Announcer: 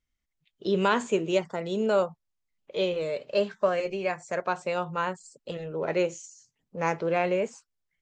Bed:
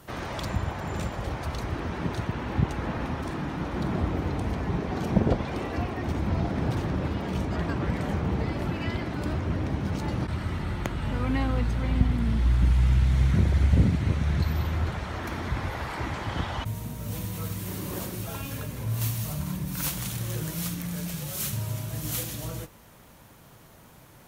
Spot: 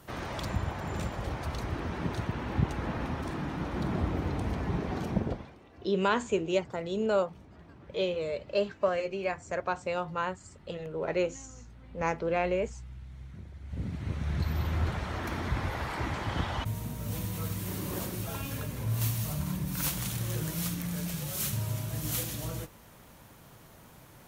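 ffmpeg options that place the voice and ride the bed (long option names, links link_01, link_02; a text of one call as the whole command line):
ffmpeg -i stem1.wav -i stem2.wav -filter_complex "[0:a]adelay=5200,volume=-3dB[link_01];[1:a]volume=19.5dB,afade=type=out:start_time=4.91:duration=0.65:silence=0.0891251,afade=type=in:start_time=13.64:duration=1.22:silence=0.0749894[link_02];[link_01][link_02]amix=inputs=2:normalize=0" out.wav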